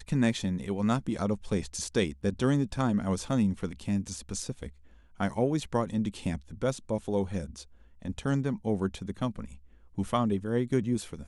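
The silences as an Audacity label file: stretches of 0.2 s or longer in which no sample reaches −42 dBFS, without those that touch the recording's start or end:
4.690000	5.200000	silence
7.630000	8.020000	silence
9.560000	9.980000	silence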